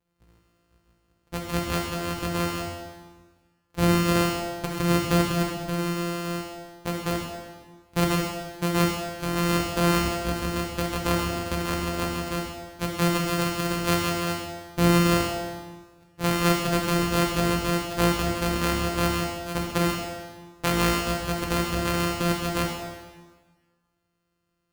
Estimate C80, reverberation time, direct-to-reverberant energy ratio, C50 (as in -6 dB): 4.5 dB, 1.4 s, -0.5 dB, 3.0 dB